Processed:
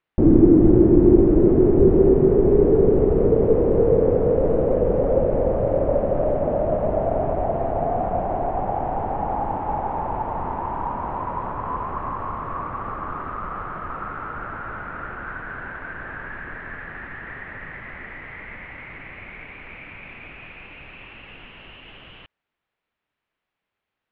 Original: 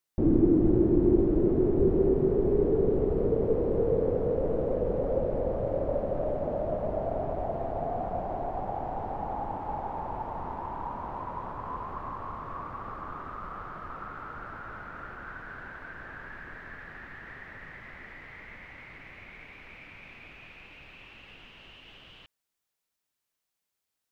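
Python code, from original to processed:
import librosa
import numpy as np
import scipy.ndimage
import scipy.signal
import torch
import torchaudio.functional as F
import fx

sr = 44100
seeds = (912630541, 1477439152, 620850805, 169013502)

y = scipy.signal.sosfilt(scipy.signal.butter(4, 2900.0, 'lowpass', fs=sr, output='sos'), x)
y = y * 10.0 ** (9.0 / 20.0)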